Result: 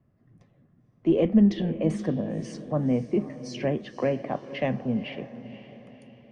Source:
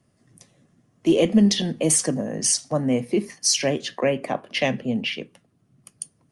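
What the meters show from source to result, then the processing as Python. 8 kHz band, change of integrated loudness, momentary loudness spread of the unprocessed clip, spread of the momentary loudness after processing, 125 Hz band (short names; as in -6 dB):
-29.5 dB, -4.5 dB, 10 LU, 16 LU, -0.5 dB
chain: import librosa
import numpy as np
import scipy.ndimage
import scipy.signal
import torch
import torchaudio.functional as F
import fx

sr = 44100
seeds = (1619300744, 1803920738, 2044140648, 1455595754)

y = scipy.signal.sosfilt(scipy.signal.butter(2, 1800.0, 'lowpass', fs=sr, output='sos'), x)
y = fx.low_shelf(y, sr, hz=160.0, db=8.5)
y = fx.echo_diffused(y, sr, ms=513, feedback_pct=45, wet_db=-13.5)
y = y * 10.0 ** (-5.0 / 20.0)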